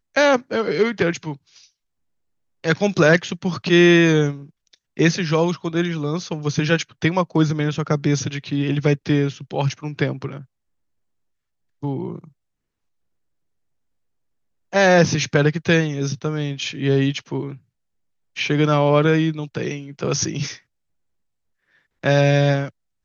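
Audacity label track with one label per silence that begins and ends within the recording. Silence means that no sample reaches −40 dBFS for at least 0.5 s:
1.650000	2.640000	silence
10.440000	11.830000	silence
12.280000	14.730000	silence
17.570000	18.360000	silence
20.590000	22.030000	silence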